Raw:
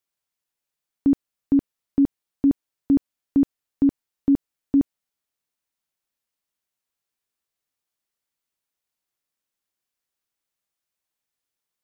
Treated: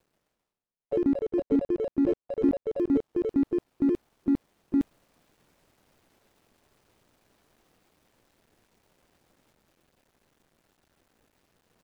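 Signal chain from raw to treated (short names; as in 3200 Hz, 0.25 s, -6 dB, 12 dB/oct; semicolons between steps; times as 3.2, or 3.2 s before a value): median filter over 41 samples; reverse; upward compressor, threshold -33 dBFS; reverse; harmoniser -3 st -17 dB, +4 st -17 dB; echoes that change speed 0.131 s, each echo +4 st, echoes 3; gain -6 dB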